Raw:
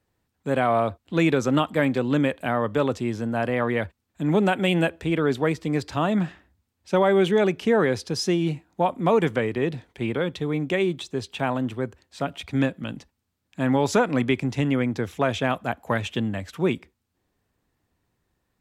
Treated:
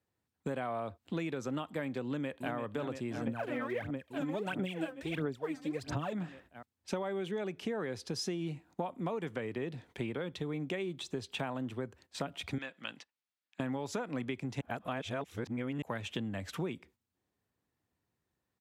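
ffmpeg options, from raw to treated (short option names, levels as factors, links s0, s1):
-filter_complex "[0:a]asplit=2[s0][s1];[s1]afade=t=in:st=2.06:d=0.01,afade=t=out:st=2.54:d=0.01,aecho=0:1:340|680|1020|1360|1700|2040|2380|2720|3060|3400|3740|4080:0.354813|0.301591|0.256353|0.2179|0.185215|0.157433|0.133818|0.113745|0.0966833|0.0821808|0.0698537|0.0593756[s2];[s0][s2]amix=inputs=2:normalize=0,asettb=1/sr,asplit=3[s3][s4][s5];[s3]atrim=end=3.274[s6];[s4]atrim=start=3.27:end=6.13,asetpts=PTS-STARTPTS,afade=t=in:d=0.004:c=qsin,afade=t=out:st=2.856:d=0.004:c=qsin,aphaser=in_gain=1:out_gain=1:delay=3.9:decay=0.77:speed=1.5:type=sinusoidal[s7];[s5]atrim=start=6.126[s8];[s6][s7]acrossfade=d=0.004:c1=hsin:c2=qsin[s9];[s9][s8]acrossfade=d=0.004:c1=qsin:c2=hsin,asettb=1/sr,asplit=3[s10][s11][s12];[s10]atrim=end=12.584[s13];[s11]atrim=start=12.58:end=13.6,asetpts=PTS-STARTPTS,afade=t=in:d=0.004:c=qsin,afade=t=out:st=1.016:d=0.004:c=qsin,bandpass=f=2600:t=q:w=0.72[s14];[s12]atrim=start=13.596[s15];[s13][s14]acrossfade=d=0.004:c1=hsin:c2=qsin[s16];[s16][s15]acrossfade=d=0.004:c1=qsin:c2=hsin,asplit=3[s17][s18][s19];[s17]atrim=end=14.612[s20];[s18]atrim=start=14.608:end=15.822,asetpts=PTS-STARTPTS,areverse[s21];[s19]atrim=start=15.818[s22];[s20][s21]acrossfade=d=0.004:c1=hsin:c2=hsin[s23];[s23][s22]acrossfade=d=0.004:c1=hsin:c2=hsin,agate=range=0.316:threshold=0.00316:ratio=16:detection=peak,highpass=77,acompressor=threshold=0.02:ratio=8"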